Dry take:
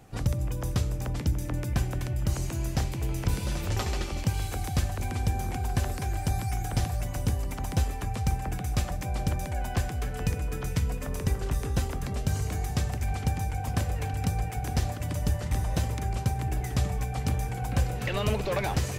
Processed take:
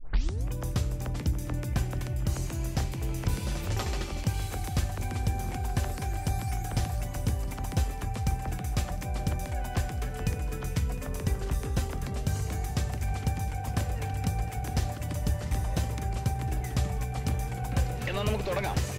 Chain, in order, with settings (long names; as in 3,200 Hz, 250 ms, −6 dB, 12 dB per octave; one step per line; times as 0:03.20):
turntable start at the beginning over 0.48 s
single-tap delay 709 ms −19 dB
level −1.5 dB